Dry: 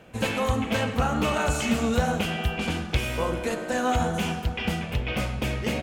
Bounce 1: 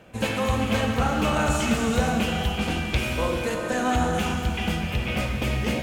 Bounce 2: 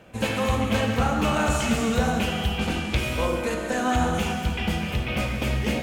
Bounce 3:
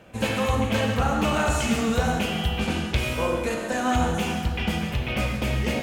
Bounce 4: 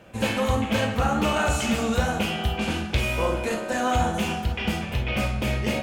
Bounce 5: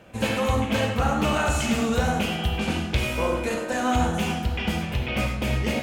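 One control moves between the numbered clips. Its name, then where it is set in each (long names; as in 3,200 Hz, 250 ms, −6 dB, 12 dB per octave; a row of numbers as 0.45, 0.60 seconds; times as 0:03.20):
reverb whose tail is shaped and stops, gate: 490, 320, 200, 80, 130 milliseconds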